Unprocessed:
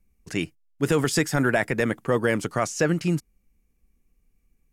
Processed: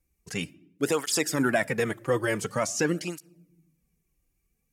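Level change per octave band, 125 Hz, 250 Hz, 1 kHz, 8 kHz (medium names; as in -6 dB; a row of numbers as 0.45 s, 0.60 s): -7.5 dB, -4.5 dB, -3.0 dB, +1.5 dB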